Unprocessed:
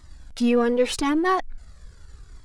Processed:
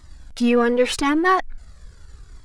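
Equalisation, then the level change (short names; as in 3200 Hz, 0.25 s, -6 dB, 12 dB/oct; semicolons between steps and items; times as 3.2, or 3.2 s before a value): dynamic EQ 1700 Hz, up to +5 dB, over -38 dBFS, Q 0.95; +2.0 dB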